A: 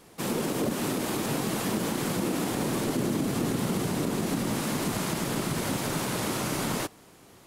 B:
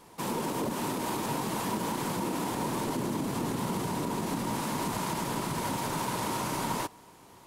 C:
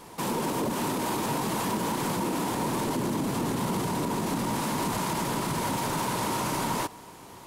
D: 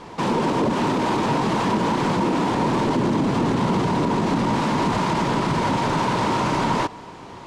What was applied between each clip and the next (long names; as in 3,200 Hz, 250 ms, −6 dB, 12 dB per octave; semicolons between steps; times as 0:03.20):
in parallel at 0 dB: brickwall limiter −25.5 dBFS, peak gain reduction 7.5 dB; on the sum: parametric band 950 Hz +12.5 dB 0.28 octaves; level −8 dB
in parallel at +2.5 dB: brickwall limiter −31 dBFS, peak gain reduction 10.5 dB; on the sum: soft clipping −18.5 dBFS, distortion −24 dB
high-frequency loss of the air 130 metres; level +8.5 dB